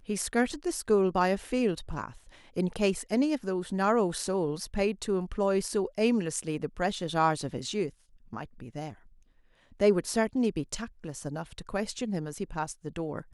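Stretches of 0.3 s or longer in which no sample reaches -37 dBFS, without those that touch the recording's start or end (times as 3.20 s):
2.11–2.57 s
7.90–8.33 s
8.92–9.80 s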